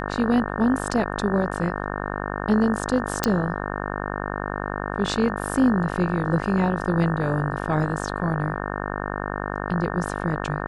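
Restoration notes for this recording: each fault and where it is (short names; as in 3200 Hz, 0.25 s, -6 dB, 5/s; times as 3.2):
buzz 50 Hz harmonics 36 -29 dBFS
3.24 pop -4 dBFS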